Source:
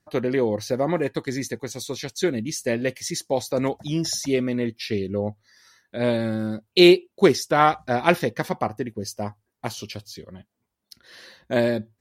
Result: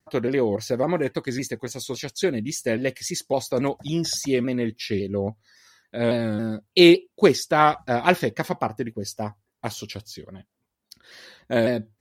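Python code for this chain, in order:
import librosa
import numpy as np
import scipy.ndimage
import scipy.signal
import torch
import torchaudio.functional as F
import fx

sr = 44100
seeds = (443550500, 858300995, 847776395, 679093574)

y = fx.vibrato_shape(x, sr, shape='saw_down', rate_hz=3.6, depth_cents=100.0)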